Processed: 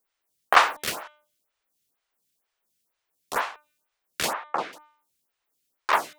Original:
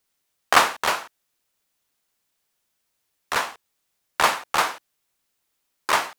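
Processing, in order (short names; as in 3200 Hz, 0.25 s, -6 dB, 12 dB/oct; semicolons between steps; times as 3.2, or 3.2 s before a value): 0.62–1.03 switching dead time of 0.058 ms; 4.33–4.73 BPF 190–2300 Hz; de-hum 300.5 Hz, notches 13; photocell phaser 2.1 Hz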